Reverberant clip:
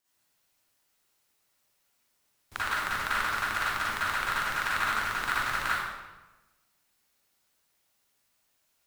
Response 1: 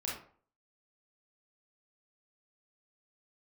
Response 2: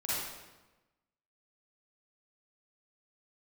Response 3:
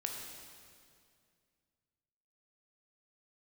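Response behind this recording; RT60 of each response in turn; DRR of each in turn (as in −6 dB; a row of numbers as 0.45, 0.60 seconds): 2; 0.50, 1.1, 2.3 seconds; −5.0, −10.0, 0.5 decibels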